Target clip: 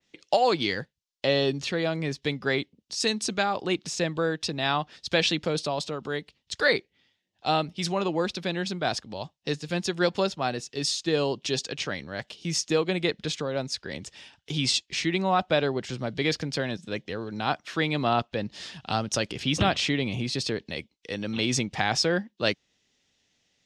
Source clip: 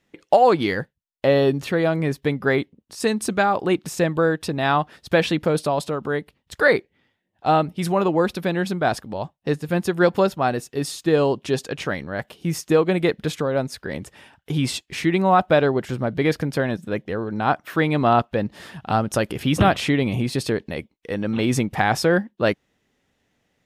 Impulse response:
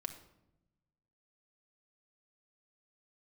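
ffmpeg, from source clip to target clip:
-filter_complex "[0:a]lowpass=frequency=6000:width=0.5412,lowpass=frequency=6000:width=1.3066,acrossover=split=170|2000[link_01][link_02][link_03];[link_03]crystalizer=i=9:c=0[link_04];[link_01][link_02][link_04]amix=inputs=3:normalize=0,adynamicequalizer=threshold=0.0251:dfrequency=2600:dqfactor=0.7:tfrequency=2600:tqfactor=0.7:attack=5:release=100:ratio=0.375:range=3:mode=cutabove:tftype=highshelf,volume=-7.5dB"

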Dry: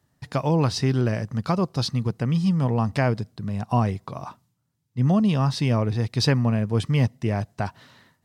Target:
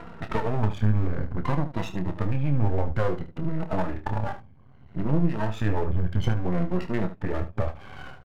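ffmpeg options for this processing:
ffmpeg -i in.wav -filter_complex "[0:a]afftfilt=real='re*pow(10,22/40*sin(2*PI*(2*log(max(b,1)*sr/1024/100)/log(2)-(-0.59)*(pts-256)/sr)))':imag='im*pow(10,22/40*sin(2*PI*(2*log(max(b,1)*sr/1024/100)/log(2)-(-0.59)*(pts-256)/sr)))':win_size=1024:overlap=0.75,acompressor=mode=upward:threshold=-17dB:ratio=2.5,lowpass=frequency=3000:width=0.5412,lowpass=frequency=3000:width=1.3066,aeval=exprs='max(val(0),0)':channel_layout=same,highshelf=frequency=2100:gain=-2.5,acompressor=threshold=-20dB:ratio=3,asetrate=35002,aresample=44100,atempo=1.25992,asplit=2[link_01][link_02];[link_02]aecho=0:1:28|75:0.355|0.237[link_03];[link_01][link_03]amix=inputs=2:normalize=0" out.wav

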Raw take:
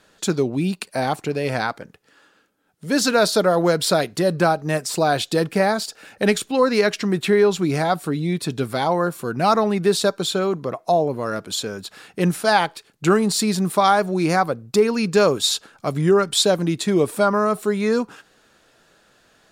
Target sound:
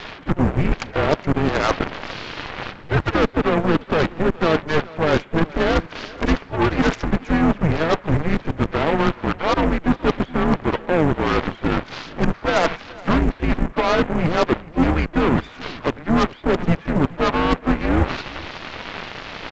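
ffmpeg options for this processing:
ffmpeg -i in.wav -filter_complex "[0:a]aeval=exprs='val(0)+0.5*0.0596*sgn(val(0))':channel_layout=same,equalizer=frequency=110:width=2.8:gain=11,highpass=frequency=220:width_type=q:width=0.5412,highpass=frequency=220:width_type=q:width=1.307,lowpass=frequency=2300:width_type=q:width=0.5176,lowpass=frequency=2300:width_type=q:width=0.7071,lowpass=frequency=2300:width_type=q:width=1.932,afreqshift=-160,areverse,acompressor=threshold=-24dB:ratio=8,areverse,aeval=exprs='0.15*(cos(1*acos(clip(val(0)/0.15,-1,1)))-cos(1*PI/2))+0.0237*(cos(2*acos(clip(val(0)/0.15,-1,1)))-cos(2*PI/2))+0.00266*(cos(3*acos(clip(val(0)/0.15,-1,1)))-cos(3*PI/2))+0.00119*(cos(4*acos(clip(val(0)/0.15,-1,1)))-cos(4*PI/2))+0.0299*(cos(7*acos(clip(val(0)/0.15,-1,1)))-cos(7*PI/2))':channel_layout=same,asplit=2[link_01][link_02];[link_02]aecho=0:1:422:0.0891[link_03];[link_01][link_03]amix=inputs=2:normalize=0,asplit=4[link_04][link_05][link_06][link_07];[link_05]asetrate=22050,aresample=44100,atempo=2,volume=-15dB[link_08];[link_06]asetrate=29433,aresample=44100,atempo=1.49831,volume=-9dB[link_09];[link_07]asetrate=58866,aresample=44100,atempo=0.749154,volume=-13dB[link_10];[link_04][link_08][link_09][link_10]amix=inputs=4:normalize=0,volume=8dB" -ar 16000 -c:a pcm_alaw out.wav

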